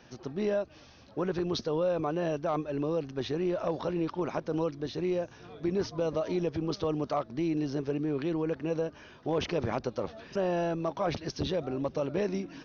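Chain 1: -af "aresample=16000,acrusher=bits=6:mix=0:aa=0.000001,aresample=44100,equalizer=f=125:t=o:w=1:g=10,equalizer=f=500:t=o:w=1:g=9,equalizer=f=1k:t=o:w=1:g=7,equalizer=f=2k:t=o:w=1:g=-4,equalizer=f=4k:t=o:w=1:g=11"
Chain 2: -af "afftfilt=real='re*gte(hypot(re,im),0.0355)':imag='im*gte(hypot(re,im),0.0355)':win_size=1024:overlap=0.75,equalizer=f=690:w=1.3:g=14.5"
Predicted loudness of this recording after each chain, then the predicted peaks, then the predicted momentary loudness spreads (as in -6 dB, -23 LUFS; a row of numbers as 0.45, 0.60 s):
-24.0, -24.5 LUFS; -10.0, -8.5 dBFS; 5, 8 LU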